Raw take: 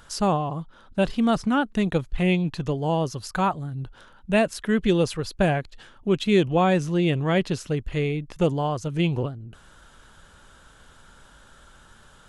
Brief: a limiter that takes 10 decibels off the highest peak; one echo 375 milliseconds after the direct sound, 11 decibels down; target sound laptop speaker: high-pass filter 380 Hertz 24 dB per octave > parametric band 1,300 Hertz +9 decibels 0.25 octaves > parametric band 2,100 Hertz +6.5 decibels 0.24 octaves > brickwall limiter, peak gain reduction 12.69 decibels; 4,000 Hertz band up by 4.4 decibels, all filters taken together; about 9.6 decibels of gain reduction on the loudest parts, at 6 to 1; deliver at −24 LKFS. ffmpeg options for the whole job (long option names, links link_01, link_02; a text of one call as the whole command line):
ffmpeg -i in.wav -af "equalizer=frequency=4000:width_type=o:gain=5.5,acompressor=threshold=-26dB:ratio=6,alimiter=level_in=2.5dB:limit=-24dB:level=0:latency=1,volume=-2.5dB,highpass=frequency=380:width=0.5412,highpass=frequency=380:width=1.3066,equalizer=frequency=1300:width_type=o:width=0.25:gain=9,equalizer=frequency=2100:width_type=o:width=0.24:gain=6.5,aecho=1:1:375:0.282,volume=20dB,alimiter=limit=-13.5dB:level=0:latency=1" out.wav